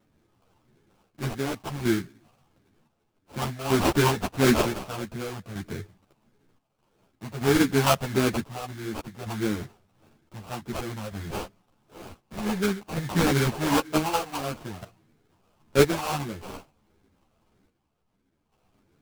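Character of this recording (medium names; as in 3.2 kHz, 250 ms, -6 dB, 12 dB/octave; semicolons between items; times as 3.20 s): chopped level 0.54 Hz, depth 60%, duty 55%; phasing stages 12, 1.6 Hz, lowest notch 320–1100 Hz; aliases and images of a low sample rate 1.9 kHz, jitter 20%; a shimmering, thickened sound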